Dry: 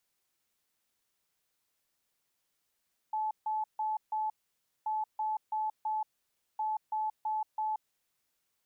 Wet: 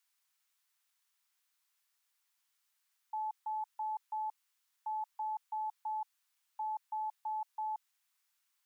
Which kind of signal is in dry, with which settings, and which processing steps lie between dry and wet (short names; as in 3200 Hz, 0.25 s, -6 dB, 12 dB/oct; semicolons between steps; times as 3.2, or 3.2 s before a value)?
beep pattern sine 864 Hz, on 0.18 s, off 0.15 s, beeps 4, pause 0.56 s, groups 3, -29.5 dBFS
HPF 920 Hz 24 dB/oct